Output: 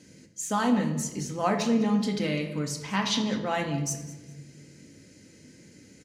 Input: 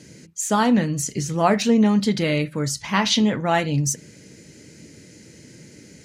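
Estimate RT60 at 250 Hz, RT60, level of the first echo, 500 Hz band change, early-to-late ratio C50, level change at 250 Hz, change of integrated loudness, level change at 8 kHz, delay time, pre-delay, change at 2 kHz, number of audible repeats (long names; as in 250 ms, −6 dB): 1.5 s, 1.2 s, −17.5 dB, −7.5 dB, 8.5 dB, −6.5 dB, −7.0 dB, −7.5 dB, 202 ms, 3 ms, −7.0 dB, 2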